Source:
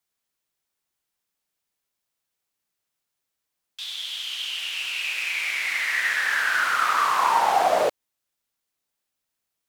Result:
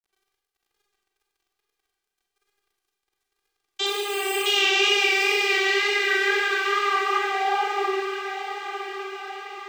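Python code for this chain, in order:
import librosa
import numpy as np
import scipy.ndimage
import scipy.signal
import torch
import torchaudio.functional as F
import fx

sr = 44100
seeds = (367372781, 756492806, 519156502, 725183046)

p1 = fx.low_shelf(x, sr, hz=310.0, db=6.0)
p2 = fx.over_compress(p1, sr, threshold_db=-31.0, ratio=-1.0)
p3 = fx.cheby_harmonics(p2, sr, harmonics=(3, 4, 6, 8), levels_db=(-42, -10, -9, -12), full_scale_db=-13.5)
p4 = fx.vocoder(p3, sr, bands=32, carrier='saw', carrier_hz=398.0)
p5 = fx.quant_dither(p4, sr, seeds[0], bits=12, dither='none')
p6 = fx.wow_flutter(p5, sr, seeds[1], rate_hz=2.1, depth_cents=55.0)
p7 = fx.resample_bad(p6, sr, factor=8, down='filtered', up='hold', at=(3.86, 4.46))
p8 = p7 + fx.echo_diffused(p7, sr, ms=991, feedback_pct=57, wet_db=-9, dry=0)
p9 = fx.rev_schroeder(p8, sr, rt60_s=0.92, comb_ms=32, drr_db=-0.5)
y = F.gain(torch.from_numpy(p9), 4.5).numpy()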